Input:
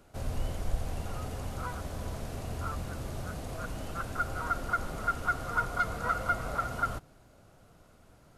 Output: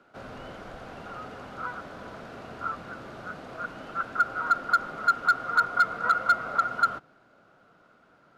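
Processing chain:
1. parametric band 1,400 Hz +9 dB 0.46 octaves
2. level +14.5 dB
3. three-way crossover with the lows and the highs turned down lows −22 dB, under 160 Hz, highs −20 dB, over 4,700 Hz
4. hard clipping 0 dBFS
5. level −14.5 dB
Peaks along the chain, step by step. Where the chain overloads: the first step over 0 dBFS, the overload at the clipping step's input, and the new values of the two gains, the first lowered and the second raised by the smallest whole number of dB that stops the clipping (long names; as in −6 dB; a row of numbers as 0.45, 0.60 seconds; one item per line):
−9.5, +5.0, +4.5, 0.0, −14.5 dBFS
step 2, 4.5 dB
step 2 +9.5 dB, step 5 −9.5 dB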